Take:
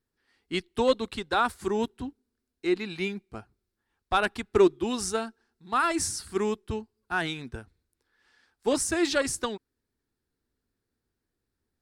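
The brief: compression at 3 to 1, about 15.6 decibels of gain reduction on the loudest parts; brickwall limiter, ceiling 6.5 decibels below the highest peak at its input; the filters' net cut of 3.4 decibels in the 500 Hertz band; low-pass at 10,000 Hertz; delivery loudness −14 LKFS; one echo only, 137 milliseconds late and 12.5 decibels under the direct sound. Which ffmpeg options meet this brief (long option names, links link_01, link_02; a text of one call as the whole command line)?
ffmpeg -i in.wav -af "lowpass=10000,equalizer=frequency=500:width_type=o:gain=-4.5,acompressor=threshold=-39dB:ratio=3,alimiter=level_in=7dB:limit=-24dB:level=0:latency=1,volume=-7dB,aecho=1:1:137:0.237,volume=28.5dB" out.wav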